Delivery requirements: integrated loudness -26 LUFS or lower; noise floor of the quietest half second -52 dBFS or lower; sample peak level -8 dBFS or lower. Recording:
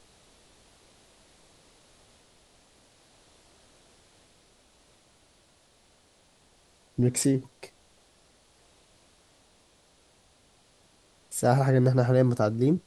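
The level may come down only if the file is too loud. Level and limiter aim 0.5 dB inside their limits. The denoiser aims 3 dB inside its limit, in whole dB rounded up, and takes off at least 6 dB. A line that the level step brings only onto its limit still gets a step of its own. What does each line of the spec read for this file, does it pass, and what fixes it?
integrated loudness -25.0 LUFS: fail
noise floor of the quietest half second -62 dBFS: OK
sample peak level -9.0 dBFS: OK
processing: gain -1.5 dB

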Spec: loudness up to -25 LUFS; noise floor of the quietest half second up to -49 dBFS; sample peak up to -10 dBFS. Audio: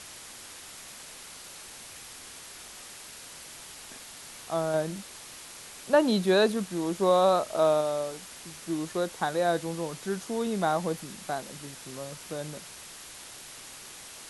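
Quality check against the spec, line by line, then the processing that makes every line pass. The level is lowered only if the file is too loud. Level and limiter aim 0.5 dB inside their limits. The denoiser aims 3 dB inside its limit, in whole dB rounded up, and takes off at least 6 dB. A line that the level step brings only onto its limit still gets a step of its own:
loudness -28.0 LUFS: OK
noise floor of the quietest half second -46 dBFS: fail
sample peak -11.0 dBFS: OK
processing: denoiser 6 dB, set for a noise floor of -46 dBFS

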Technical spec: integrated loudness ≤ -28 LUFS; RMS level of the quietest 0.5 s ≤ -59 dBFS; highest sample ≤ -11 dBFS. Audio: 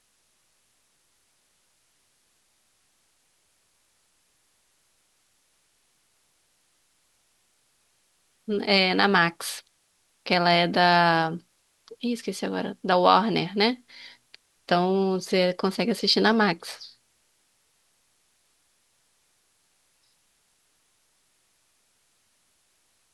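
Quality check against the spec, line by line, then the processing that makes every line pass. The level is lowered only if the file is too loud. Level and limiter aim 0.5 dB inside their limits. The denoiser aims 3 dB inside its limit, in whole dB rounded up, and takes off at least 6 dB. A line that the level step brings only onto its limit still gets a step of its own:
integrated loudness -23.0 LUFS: fail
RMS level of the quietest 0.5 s -68 dBFS: OK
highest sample -2.5 dBFS: fail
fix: gain -5.5 dB; limiter -11.5 dBFS

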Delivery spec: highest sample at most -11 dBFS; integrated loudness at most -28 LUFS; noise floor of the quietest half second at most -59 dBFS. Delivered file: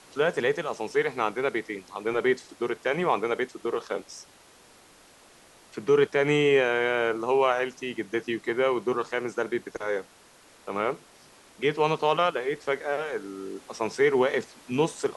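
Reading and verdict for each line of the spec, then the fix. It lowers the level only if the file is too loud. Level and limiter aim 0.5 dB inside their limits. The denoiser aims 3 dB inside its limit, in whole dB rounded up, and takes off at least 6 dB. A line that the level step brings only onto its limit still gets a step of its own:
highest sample -9.5 dBFS: fail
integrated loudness -27.0 LUFS: fail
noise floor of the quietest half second -55 dBFS: fail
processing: denoiser 6 dB, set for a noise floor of -55 dBFS; gain -1.5 dB; limiter -11.5 dBFS

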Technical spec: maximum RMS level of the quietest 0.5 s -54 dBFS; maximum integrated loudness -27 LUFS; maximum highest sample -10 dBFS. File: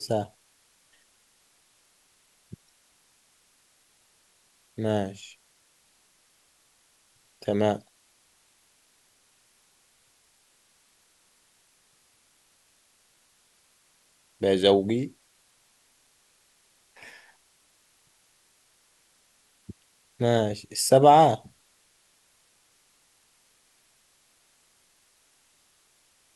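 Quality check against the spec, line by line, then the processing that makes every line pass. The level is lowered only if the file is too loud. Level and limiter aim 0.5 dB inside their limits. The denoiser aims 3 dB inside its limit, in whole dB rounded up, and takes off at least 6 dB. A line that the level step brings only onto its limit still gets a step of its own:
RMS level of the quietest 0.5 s -65 dBFS: OK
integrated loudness -23.5 LUFS: fail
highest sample -5.0 dBFS: fail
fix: gain -4 dB; limiter -10.5 dBFS

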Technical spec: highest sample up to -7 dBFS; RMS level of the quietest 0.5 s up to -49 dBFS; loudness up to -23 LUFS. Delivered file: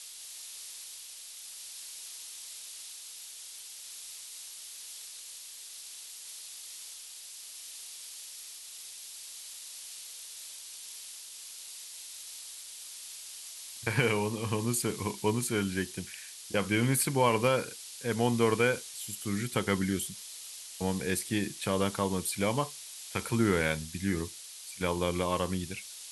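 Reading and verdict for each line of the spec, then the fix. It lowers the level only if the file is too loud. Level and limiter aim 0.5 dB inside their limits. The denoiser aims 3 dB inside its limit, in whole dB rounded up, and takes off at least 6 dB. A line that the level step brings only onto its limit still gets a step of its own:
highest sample -12.5 dBFS: OK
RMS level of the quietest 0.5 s -46 dBFS: fail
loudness -34.0 LUFS: OK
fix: denoiser 6 dB, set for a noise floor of -46 dBFS

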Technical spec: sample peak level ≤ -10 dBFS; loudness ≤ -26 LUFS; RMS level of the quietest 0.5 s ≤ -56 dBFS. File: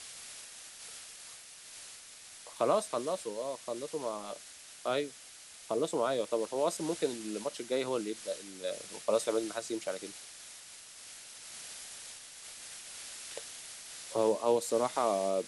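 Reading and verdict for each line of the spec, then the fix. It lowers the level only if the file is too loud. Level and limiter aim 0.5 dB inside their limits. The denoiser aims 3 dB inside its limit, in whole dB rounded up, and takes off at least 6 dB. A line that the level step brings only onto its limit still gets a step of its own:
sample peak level -16.5 dBFS: OK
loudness -35.0 LUFS: OK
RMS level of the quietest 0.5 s -52 dBFS: fail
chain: denoiser 7 dB, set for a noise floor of -52 dBFS

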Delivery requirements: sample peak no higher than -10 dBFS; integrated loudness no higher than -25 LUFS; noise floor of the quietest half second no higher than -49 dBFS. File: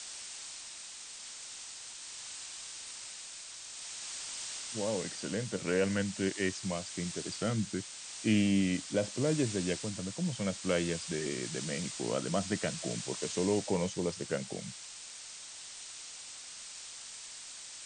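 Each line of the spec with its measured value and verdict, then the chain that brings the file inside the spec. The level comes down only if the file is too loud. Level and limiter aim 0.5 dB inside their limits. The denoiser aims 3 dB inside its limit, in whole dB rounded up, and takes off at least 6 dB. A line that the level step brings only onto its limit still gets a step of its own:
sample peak -16.0 dBFS: OK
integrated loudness -35.5 LUFS: OK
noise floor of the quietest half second -47 dBFS: fail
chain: denoiser 6 dB, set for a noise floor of -47 dBFS

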